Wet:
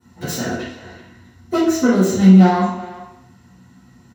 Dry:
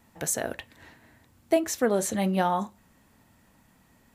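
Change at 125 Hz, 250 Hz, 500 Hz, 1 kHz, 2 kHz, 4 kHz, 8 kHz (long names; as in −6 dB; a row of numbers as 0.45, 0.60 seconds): +18.5, +16.5, +6.0, +7.5, +8.0, +8.5, +1.0 decibels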